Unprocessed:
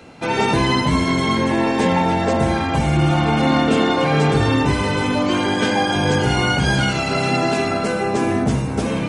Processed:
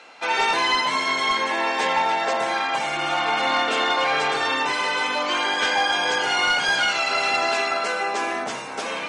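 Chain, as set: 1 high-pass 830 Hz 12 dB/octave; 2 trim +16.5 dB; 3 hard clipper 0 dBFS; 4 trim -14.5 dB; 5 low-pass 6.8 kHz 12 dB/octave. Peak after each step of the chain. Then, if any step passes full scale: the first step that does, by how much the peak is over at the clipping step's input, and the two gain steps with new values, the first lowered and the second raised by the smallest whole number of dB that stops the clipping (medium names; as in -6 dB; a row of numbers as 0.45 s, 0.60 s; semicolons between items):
-10.0 dBFS, +6.5 dBFS, 0.0 dBFS, -14.5 dBFS, -14.0 dBFS; step 2, 6.5 dB; step 2 +9.5 dB, step 4 -7.5 dB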